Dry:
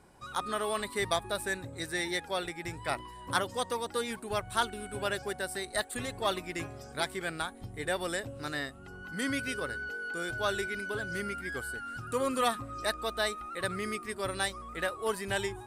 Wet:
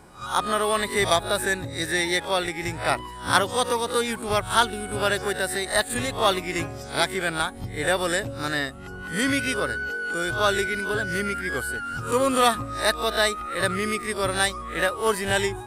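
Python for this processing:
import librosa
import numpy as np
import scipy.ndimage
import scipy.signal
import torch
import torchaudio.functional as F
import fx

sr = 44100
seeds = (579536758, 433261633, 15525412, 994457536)

y = fx.spec_swells(x, sr, rise_s=0.3)
y = y * 10.0 ** (8.5 / 20.0)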